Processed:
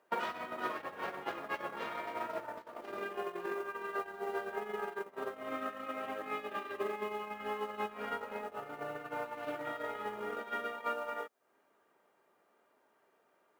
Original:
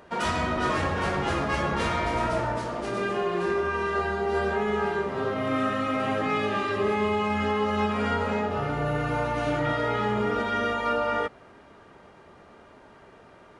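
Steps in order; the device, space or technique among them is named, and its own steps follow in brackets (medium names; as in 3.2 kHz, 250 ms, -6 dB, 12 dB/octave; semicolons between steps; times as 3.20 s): baby monitor (band-pass 340–3400 Hz; compression 6:1, threshold -41 dBFS, peak gain reduction 17 dB; white noise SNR 25 dB; gate -40 dBFS, range -31 dB); trim +12 dB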